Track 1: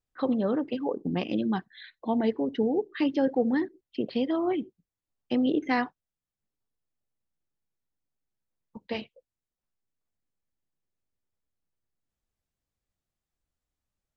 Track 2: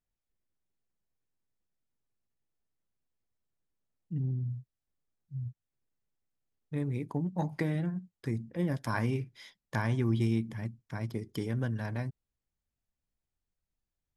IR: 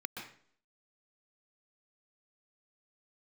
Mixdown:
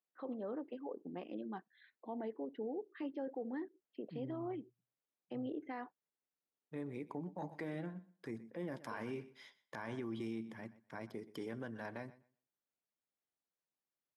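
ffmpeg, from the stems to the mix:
-filter_complex "[0:a]lowpass=f=1.7k:p=1,volume=-11.5dB[a];[1:a]volume=-3dB,asplit=2[b][c];[c]volume=-19dB,aecho=0:1:124|248|372:1|0.17|0.0289[d];[a][b][d]amix=inputs=3:normalize=0,highpass=310,highshelf=f=3.4k:g=-9.5,alimiter=level_in=10dB:limit=-24dB:level=0:latency=1:release=24,volume=-10dB"

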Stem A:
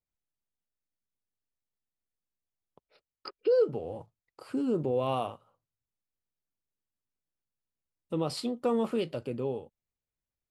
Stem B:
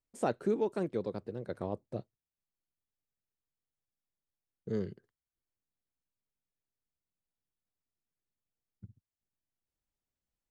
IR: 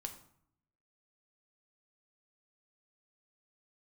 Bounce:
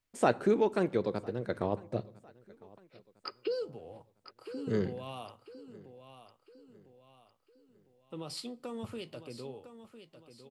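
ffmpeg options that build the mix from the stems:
-filter_complex "[0:a]acrossover=split=270|3000[a][b][c];[b]acompressor=threshold=-31dB:ratio=6[d];[a][d][c]amix=inputs=3:normalize=0,adynamicequalizer=threshold=0.00251:dfrequency=4100:dqfactor=0.7:tfrequency=4100:tqfactor=0.7:attack=5:release=100:ratio=0.375:range=3.5:mode=boostabove:tftype=highshelf,volume=-4.5dB,afade=t=out:st=3.5:d=0.23:silence=0.398107,asplit=3[e][f][g];[f]volume=-10.5dB[h];[g]volume=-10dB[i];[1:a]volume=1dB,asplit=3[j][k][l];[k]volume=-6dB[m];[l]volume=-22dB[n];[2:a]atrim=start_sample=2205[o];[h][m]amix=inputs=2:normalize=0[p];[p][o]afir=irnorm=-1:irlink=0[q];[i][n]amix=inputs=2:normalize=0,aecho=0:1:1004|2008|3012|4016|5020|6024:1|0.42|0.176|0.0741|0.0311|0.0131[r];[e][j][q][r]amix=inputs=4:normalize=0,equalizer=f=2.2k:w=0.48:g=6"

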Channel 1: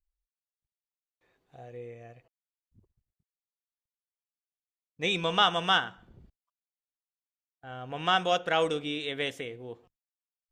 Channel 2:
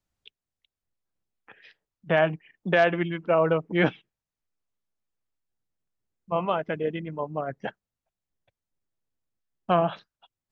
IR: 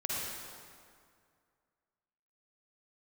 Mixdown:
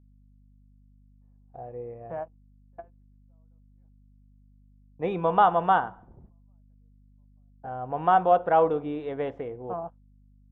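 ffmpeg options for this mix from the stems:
-filter_complex "[0:a]volume=2.5dB,asplit=2[a][b];[1:a]bandreject=f=50:t=h:w=6,bandreject=f=100:t=h:w=6,bandreject=f=150:t=h:w=6,bandreject=f=200:t=h:w=6,bandreject=f=250:t=h:w=6,bandreject=f=300:t=h:w=6,bandreject=f=350:t=h:w=6,bandreject=f=400:t=h:w=6,bandreject=f=450:t=h:w=6,bandreject=f=500:t=h:w=6,volume=-16.5dB[c];[b]apad=whole_len=463795[d];[c][d]sidechaingate=range=-26dB:threshold=-54dB:ratio=16:detection=peak[e];[a][e]amix=inputs=2:normalize=0,agate=range=-18dB:threshold=-53dB:ratio=16:detection=peak,lowpass=f=890:t=q:w=2.2,aeval=exprs='val(0)+0.00158*(sin(2*PI*50*n/s)+sin(2*PI*2*50*n/s)/2+sin(2*PI*3*50*n/s)/3+sin(2*PI*4*50*n/s)/4+sin(2*PI*5*50*n/s)/5)':c=same"

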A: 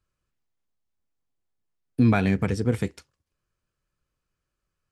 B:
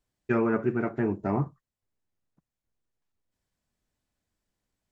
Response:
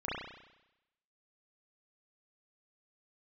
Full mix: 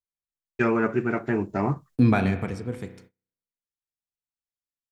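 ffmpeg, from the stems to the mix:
-filter_complex "[0:a]equalizer=f=810:w=0.82:g=2,volume=-1dB,afade=t=out:st=2.03:d=0.58:silence=0.334965,asplit=2[a][b];[b]volume=-12.5dB[c];[1:a]highshelf=f=2k:g=11,adelay=300,volume=1.5dB[d];[2:a]atrim=start_sample=2205[e];[c][e]afir=irnorm=-1:irlink=0[f];[a][d][f]amix=inputs=3:normalize=0,agate=range=-28dB:threshold=-51dB:ratio=16:detection=peak"

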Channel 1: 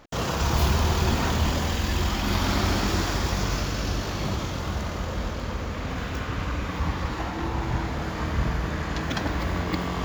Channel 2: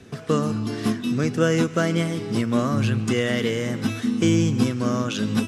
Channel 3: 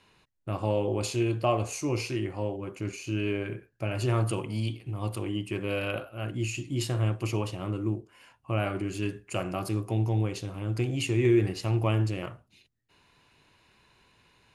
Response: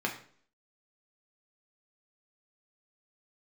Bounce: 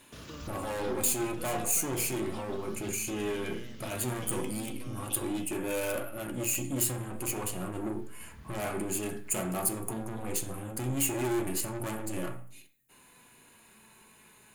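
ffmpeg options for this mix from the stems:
-filter_complex "[0:a]equalizer=f=780:w=1.5:g=-12,volume=-13.5dB[a];[1:a]equalizer=f=3.4k:w=1.5:g=13,acompressor=threshold=-25dB:ratio=6,volume=-14dB[b];[2:a]deesser=0.65,aeval=exprs='(tanh(56.2*val(0)+0.35)-tanh(0.35))/56.2':c=same,aexciter=amount=8.7:drive=5.6:freq=7.2k,volume=3dB,asplit=3[c][d][e];[d]volume=-5dB[f];[e]apad=whole_len=442912[g];[a][g]sidechaincompress=threshold=-47dB:ratio=3:attack=16:release=990[h];[3:a]atrim=start_sample=2205[i];[f][i]afir=irnorm=-1:irlink=0[j];[h][b][c][j]amix=inputs=4:normalize=0,flanger=delay=3.4:depth=1.3:regen=67:speed=0.17:shape=sinusoidal"

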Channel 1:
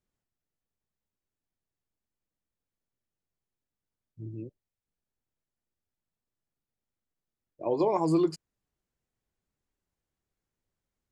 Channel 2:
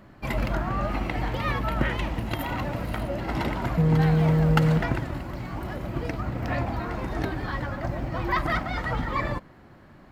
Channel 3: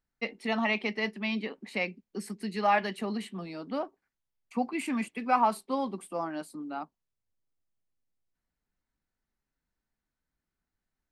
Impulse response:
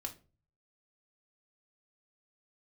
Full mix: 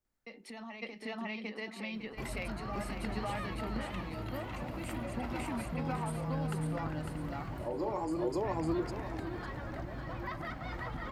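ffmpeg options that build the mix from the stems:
-filter_complex "[0:a]volume=-4.5dB,asplit=4[a][b][c][d];[b]volume=-4dB[e];[c]volume=-4dB[f];[1:a]acompressor=threshold=-31dB:ratio=4,adelay=1950,volume=-7.5dB,asplit=2[g][h];[h]volume=-5.5dB[i];[2:a]acompressor=threshold=-31dB:ratio=6,adelay=50,volume=-0.5dB,asplit=3[j][k][l];[k]volume=-18dB[m];[l]volume=-5.5dB[n];[d]apad=whole_len=532119[o];[g][o]sidechaincompress=threshold=-45dB:ratio=8:attack=29:release=181[p];[a][j]amix=inputs=2:normalize=0,acrossover=split=170|3000[q][r][s];[r]acompressor=threshold=-39dB:ratio=6[t];[q][t][s]amix=inputs=3:normalize=0,alimiter=level_in=14.5dB:limit=-24dB:level=0:latency=1:release=135,volume=-14.5dB,volume=0dB[u];[3:a]atrim=start_sample=2205[v];[e][m]amix=inputs=2:normalize=0[w];[w][v]afir=irnorm=-1:irlink=0[x];[f][i][n]amix=inputs=3:normalize=0,aecho=0:1:552|1104|1656|2208:1|0.29|0.0841|0.0244[y];[p][u][x][y]amix=inputs=4:normalize=0"

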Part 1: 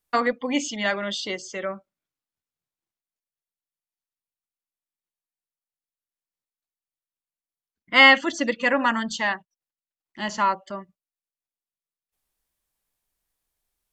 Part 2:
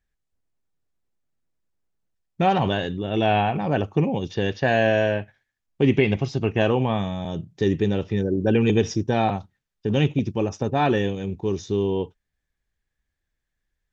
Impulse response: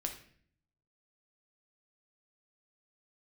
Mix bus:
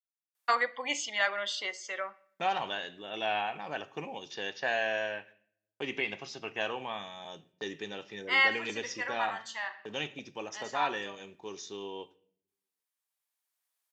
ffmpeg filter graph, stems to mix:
-filter_complex "[0:a]adelay=350,volume=-4dB,asplit=2[a][b];[b]volume=-9dB[c];[1:a]bass=f=250:g=7,treble=f=4k:g=3,agate=range=-35dB:threshold=-35dB:ratio=16:detection=peak,adynamicequalizer=threshold=0.0447:dfrequency=620:dqfactor=0.71:tfrequency=620:tqfactor=0.71:attack=5:release=100:ratio=0.375:range=2:mode=cutabove:tftype=bell,volume=-8.5dB,asplit=3[d][e][f];[e]volume=-6dB[g];[f]apad=whole_len=629702[h];[a][h]sidechaincompress=threshold=-48dB:ratio=8:attack=16:release=1140[i];[2:a]atrim=start_sample=2205[j];[c][g]amix=inputs=2:normalize=0[k];[k][j]afir=irnorm=-1:irlink=0[l];[i][d][l]amix=inputs=3:normalize=0,highpass=810,adynamicequalizer=threshold=0.00794:dfrequency=3000:dqfactor=0.7:tfrequency=3000:tqfactor=0.7:attack=5:release=100:ratio=0.375:range=2.5:mode=cutabove:tftype=highshelf"

